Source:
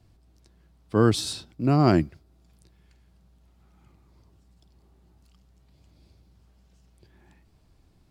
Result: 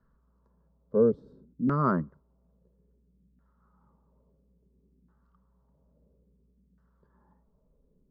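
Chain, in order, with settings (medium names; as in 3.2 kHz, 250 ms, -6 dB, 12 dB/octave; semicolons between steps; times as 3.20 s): static phaser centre 490 Hz, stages 8; LFO low-pass saw down 0.59 Hz 260–1600 Hz; trim -4 dB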